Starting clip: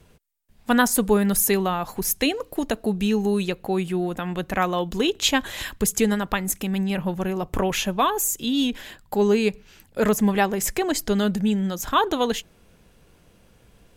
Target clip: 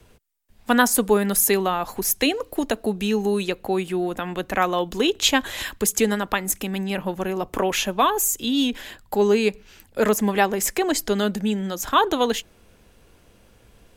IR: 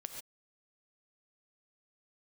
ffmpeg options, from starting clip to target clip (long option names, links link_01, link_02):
-filter_complex "[0:a]equalizer=frequency=160:width_type=o:width=0.43:gain=-7.5,acrossover=split=180|830|6900[link_01][link_02][link_03][link_04];[link_01]acompressor=threshold=-40dB:ratio=6[link_05];[link_05][link_02][link_03][link_04]amix=inputs=4:normalize=0,volume=2dB"